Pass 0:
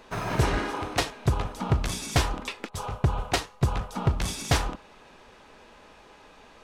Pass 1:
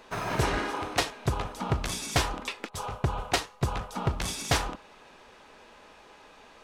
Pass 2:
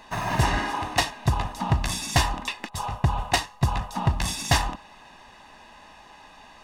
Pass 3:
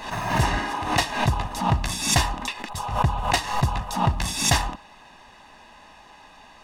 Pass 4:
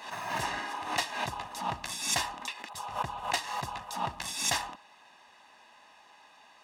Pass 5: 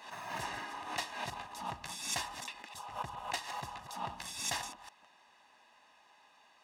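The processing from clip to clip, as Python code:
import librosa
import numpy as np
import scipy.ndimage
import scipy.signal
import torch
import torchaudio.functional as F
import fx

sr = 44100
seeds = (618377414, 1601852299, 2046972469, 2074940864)

y1 = fx.low_shelf(x, sr, hz=240.0, db=-6.0)
y2 = y1 + 0.65 * np.pad(y1, (int(1.1 * sr / 1000.0), 0))[:len(y1)]
y2 = y2 * 10.0 ** (2.5 / 20.0)
y3 = fx.pre_swell(y2, sr, db_per_s=83.0)
y4 = fx.highpass(y3, sr, hz=590.0, slope=6)
y4 = y4 * 10.0 ** (-7.0 / 20.0)
y5 = fx.reverse_delay(y4, sr, ms=163, wet_db=-10.0)
y5 = y5 * 10.0 ** (-7.0 / 20.0)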